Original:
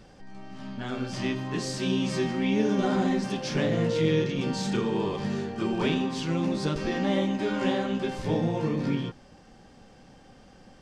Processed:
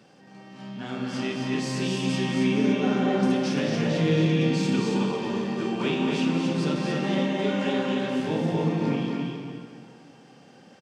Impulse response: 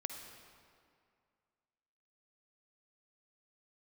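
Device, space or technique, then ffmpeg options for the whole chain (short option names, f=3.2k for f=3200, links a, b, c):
stadium PA: -filter_complex "[0:a]asettb=1/sr,asplit=3[a][b][c];[a]atrim=end=2.734[d];[b]atrim=start=2.73:end=3.23,asetpts=PTS-STARTPTS,afade=t=in:d=0.004:c=qsin,afade=t=out:st=0.496:d=0.004:c=qsin,acrossover=split=4200[e][f];[f]acompressor=threshold=-57dB:ratio=4:attack=1:release=60[g];[e][g]amix=inputs=2:normalize=0[h];[c]atrim=start=3.226[i];[d][h]acrossfade=d=0.004:c1=hsin:c2=qsin[j];[j][i]acrossfade=d=0.004:c1=qsin:c2=hsin,highpass=f=130:w=0.5412,highpass=f=130:w=1.3066,equalizer=f=2.7k:t=o:w=0.26:g=4,aecho=1:1:215.7|274.1:0.316|0.562[k];[1:a]atrim=start_sample=2205[l];[k][l]afir=irnorm=-1:irlink=0,asplit=2[m][n];[n]adelay=31,volume=-12dB[o];[m][o]amix=inputs=2:normalize=0,asplit=2[p][q];[q]adelay=227.4,volume=-6dB,highshelf=f=4k:g=-5.12[r];[p][r]amix=inputs=2:normalize=0"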